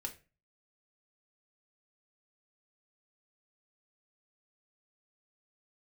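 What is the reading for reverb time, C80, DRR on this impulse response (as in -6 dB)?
0.30 s, 20.0 dB, 1.0 dB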